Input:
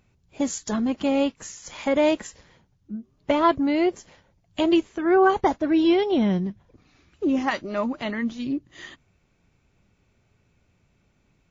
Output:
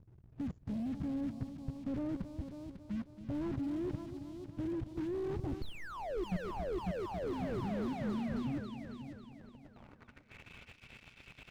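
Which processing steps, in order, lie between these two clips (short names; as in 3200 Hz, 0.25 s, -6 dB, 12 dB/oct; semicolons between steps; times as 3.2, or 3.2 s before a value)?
low-pass sweep 130 Hz -> 2900 Hz, 8.85–10.44; sample leveller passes 2; level quantiser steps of 22 dB; tilt shelf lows -8 dB, about 1300 Hz; painted sound fall, 5.62–6.24, 330–4500 Hz -21 dBFS; on a send: multi-head echo 0.274 s, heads first and second, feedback 43%, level -12.5 dB; on the sum: slew limiter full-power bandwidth 1.3 Hz; gain +15 dB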